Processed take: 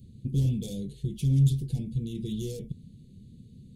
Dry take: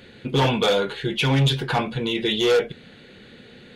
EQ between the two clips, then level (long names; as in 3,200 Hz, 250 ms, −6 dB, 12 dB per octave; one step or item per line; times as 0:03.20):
Chebyshev band-stop filter 140–8,900 Hz, order 2
low-shelf EQ 460 Hz +9.5 dB
dynamic equaliser 150 Hz, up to −6 dB, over −29 dBFS, Q 1.3
−3.5 dB